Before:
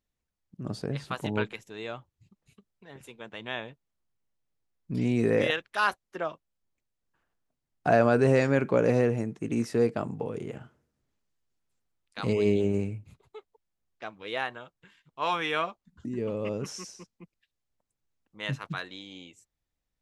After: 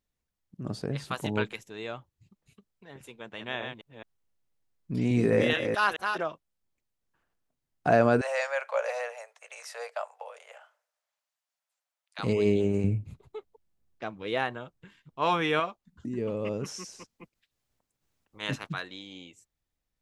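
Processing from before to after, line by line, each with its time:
0.98–1.63 high shelf 5100 Hz +6.5 dB
3.17–6.29 reverse delay 0.215 s, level -5 dB
8.21–12.19 steep high-pass 550 Hz 72 dB/oct
12.84–15.6 low shelf 490 Hz +9.5 dB
16.91–18.67 spectral limiter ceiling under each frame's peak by 13 dB

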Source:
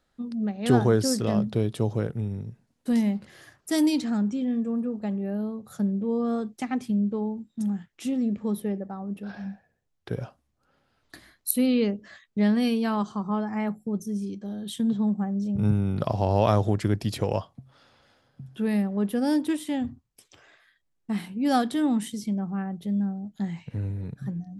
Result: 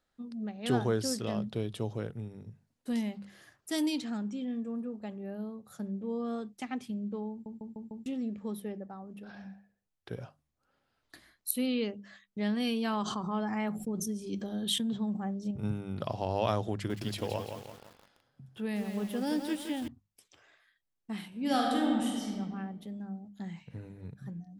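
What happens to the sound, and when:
7.31 stutter in place 0.15 s, 5 plays
12.6–15.51 fast leveller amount 70%
16.73–19.88 lo-fi delay 0.169 s, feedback 55%, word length 7-bit, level -6 dB
21.27–22.33 reverb throw, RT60 1.6 s, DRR -1.5 dB
whole clip: low shelf 470 Hz -3 dB; notches 50/100/150/200 Hz; dynamic EQ 3100 Hz, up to +5 dB, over -54 dBFS, Q 2; gain -6.5 dB

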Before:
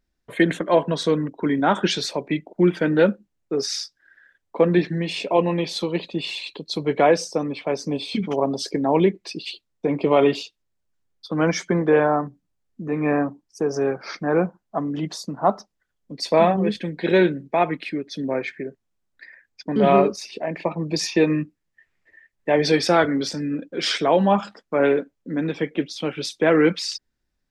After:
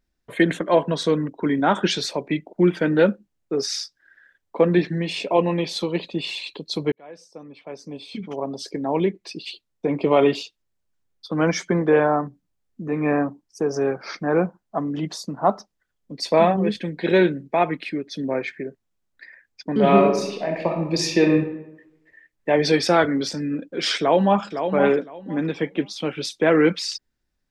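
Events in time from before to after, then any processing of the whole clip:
6.92–10.09 fade in
19.8–21.33 reverb throw, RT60 0.9 s, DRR 3 dB
23.99–24.44 echo throw 0.51 s, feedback 20%, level -7.5 dB

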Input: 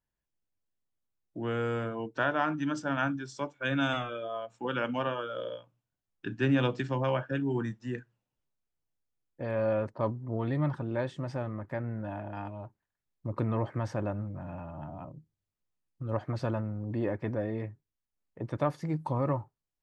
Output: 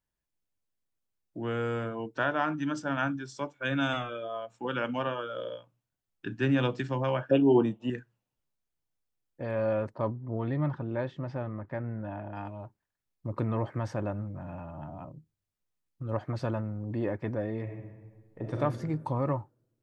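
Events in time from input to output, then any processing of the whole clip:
7.31–7.9 EQ curve 120 Hz 0 dB, 360 Hz +11 dB, 680 Hz +15 dB, 1100 Hz +6 dB, 1700 Hz -11 dB, 2900 Hz +12 dB, 5100 Hz -12 dB, 10000 Hz 0 dB
10.02–12.36 air absorption 170 m
17.62–18.57 reverb throw, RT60 1.5 s, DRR -1 dB

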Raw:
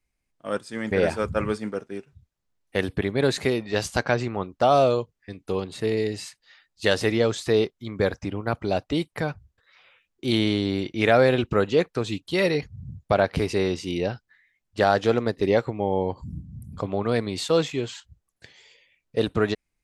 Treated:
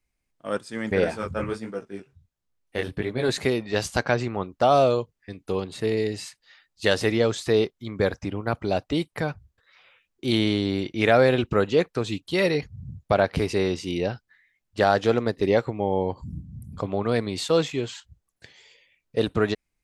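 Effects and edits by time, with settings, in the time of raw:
1.04–3.29 chorus 1.4 Hz, delay 16 ms, depth 7.3 ms

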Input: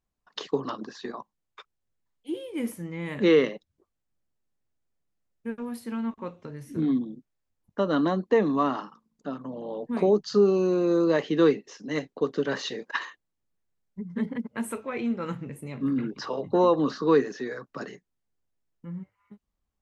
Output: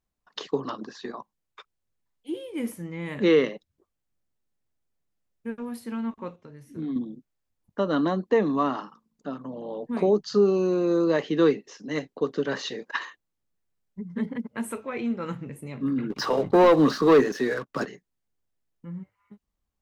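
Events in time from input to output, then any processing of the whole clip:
6.36–6.96 gain -6.5 dB
16.1–17.86 sample leveller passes 2

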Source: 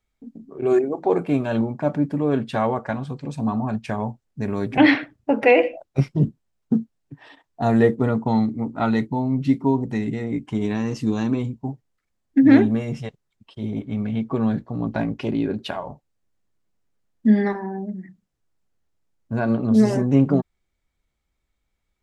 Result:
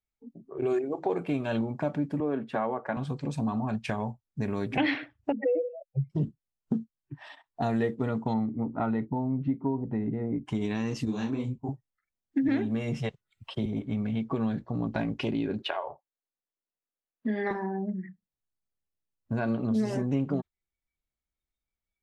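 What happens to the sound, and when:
2.2–2.97 three-band isolator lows -17 dB, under 170 Hz, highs -15 dB, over 2100 Hz
5.32–6.1 spectral contrast raised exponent 3.8
8.33–10.45 LPF 1500 Hz -> 1000 Hz
11.05–11.69 detuned doubles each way 59 cents
12.48–13.66 three-band squash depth 40%
15.62–17.51 three-band isolator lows -18 dB, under 290 Hz, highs -13 dB, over 3500 Hz
whole clip: spectral noise reduction 16 dB; dynamic EQ 3000 Hz, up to +5 dB, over -44 dBFS, Q 1.2; compressor 3:1, threshold -28 dBFS

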